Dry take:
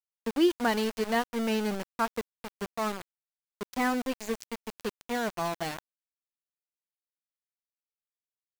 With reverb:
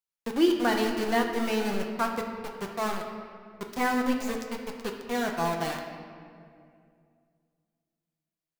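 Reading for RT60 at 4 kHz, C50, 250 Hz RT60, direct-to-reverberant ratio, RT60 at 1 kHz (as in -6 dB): 1.4 s, 5.0 dB, 2.9 s, 1.5 dB, 2.1 s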